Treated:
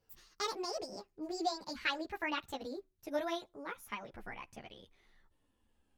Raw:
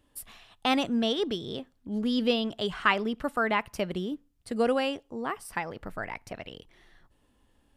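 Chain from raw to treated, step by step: gliding tape speed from 165% -> 95%; three-phase chorus; trim -7 dB

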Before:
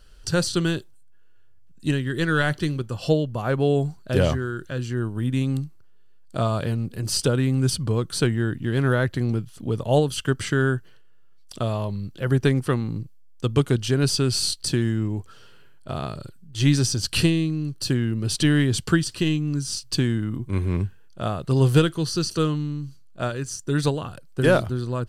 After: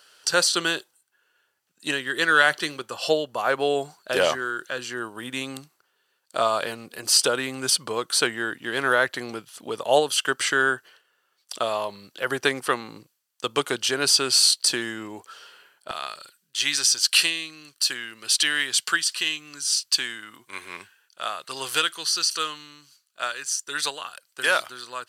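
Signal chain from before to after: high-pass 690 Hz 12 dB/octave, from 15.91 s 1.4 kHz; trim +7 dB

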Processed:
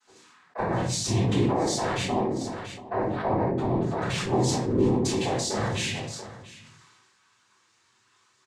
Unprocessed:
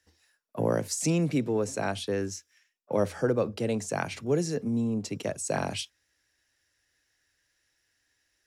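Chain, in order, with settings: reverb removal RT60 0.78 s; 2.01–4.01 s: low-pass 1 kHz 12 dB/octave; transient shaper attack 0 dB, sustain +8 dB; compression, threshold -35 dBFS, peak gain reduction 14 dB; flange 0.73 Hz, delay 6.4 ms, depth 2.2 ms, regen +61%; noise-vocoded speech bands 6; delay 686 ms -18.5 dB; simulated room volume 59 m³, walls mixed, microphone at 3.5 m; decay stretcher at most 30 dB/s; trim +1.5 dB

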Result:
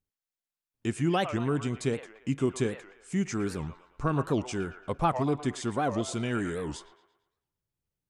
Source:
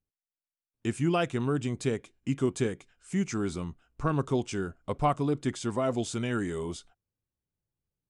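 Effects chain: on a send: feedback echo behind a band-pass 114 ms, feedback 43%, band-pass 1.3 kHz, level -7 dB; on the sum: warped record 78 rpm, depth 250 cents

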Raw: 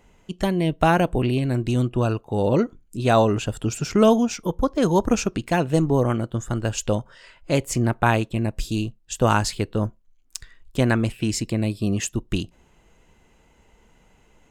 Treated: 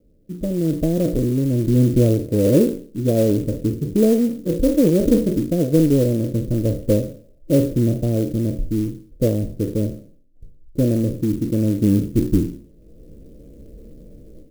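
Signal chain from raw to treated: spectral sustain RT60 0.49 s; peaking EQ 300 Hz +6 dB 0.31 oct; level rider gain up to 16.5 dB; steep low-pass 590 Hz 72 dB/octave; band-stop 390 Hz, Q 13; sampling jitter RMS 0.04 ms; trim -2 dB

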